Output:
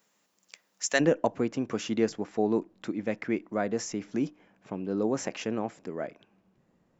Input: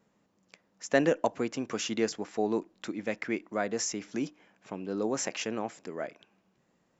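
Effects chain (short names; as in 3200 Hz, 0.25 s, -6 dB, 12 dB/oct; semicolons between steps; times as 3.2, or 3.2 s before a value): tilt +4 dB/oct, from 0.99 s -2 dB/oct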